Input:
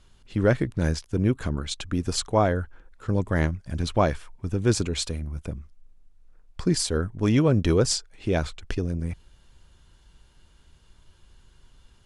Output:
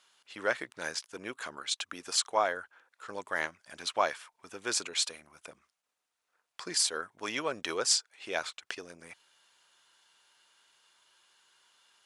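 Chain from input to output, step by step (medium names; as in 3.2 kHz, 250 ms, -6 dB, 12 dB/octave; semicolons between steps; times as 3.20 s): high-pass 900 Hz 12 dB/octave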